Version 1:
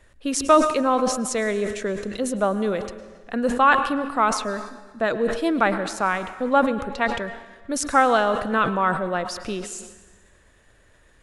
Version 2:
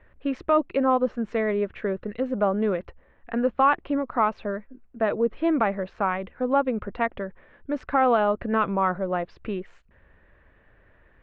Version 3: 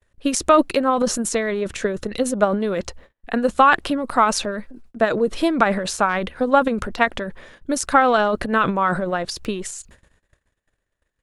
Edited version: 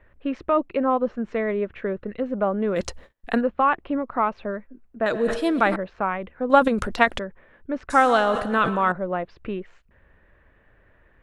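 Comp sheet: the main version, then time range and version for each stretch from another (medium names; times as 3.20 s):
2
2.76–3.41 s: from 3
5.06–5.76 s: from 1
6.50–7.19 s: from 3
7.90–8.92 s: from 1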